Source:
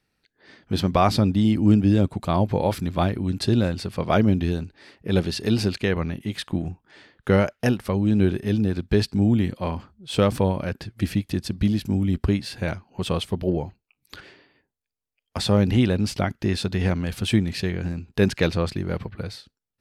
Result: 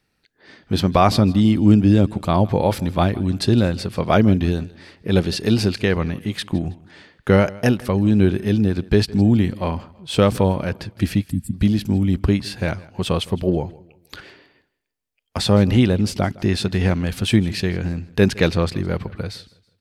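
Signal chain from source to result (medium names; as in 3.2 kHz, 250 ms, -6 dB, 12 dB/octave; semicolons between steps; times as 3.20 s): 11.30–11.54 s: time-frequency box 290–7100 Hz -27 dB; 15.87–16.28 s: peaking EQ 2.3 kHz -4 dB 1.8 oct; on a send: feedback delay 161 ms, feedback 35%, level -21.5 dB; on the sum: trim +4 dB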